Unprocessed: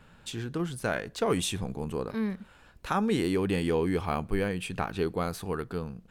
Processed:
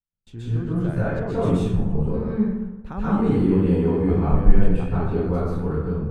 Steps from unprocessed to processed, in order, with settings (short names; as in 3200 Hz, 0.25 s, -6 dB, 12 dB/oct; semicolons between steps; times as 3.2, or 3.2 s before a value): gate -49 dBFS, range -47 dB; tilt -4 dB/oct; plate-style reverb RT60 1.1 s, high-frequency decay 0.5×, pre-delay 0.115 s, DRR -10 dB; gain -10 dB